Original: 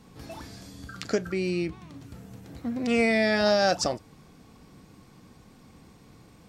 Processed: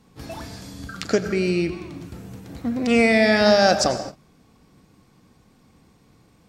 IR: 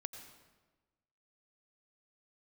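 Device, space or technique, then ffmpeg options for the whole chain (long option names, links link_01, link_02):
keyed gated reverb: -filter_complex "[0:a]asplit=3[link_01][link_02][link_03];[1:a]atrim=start_sample=2205[link_04];[link_02][link_04]afir=irnorm=-1:irlink=0[link_05];[link_03]apad=whole_len=286004[link_06];[link_05][link_06]sidechaingate=range=-33dB:threshold=-46dB:ratio=16:detection=peak,volume=9.5dB[link_07];[link_01][link_07]amix=inputs=2:normalize=0,volume=-3.5dB"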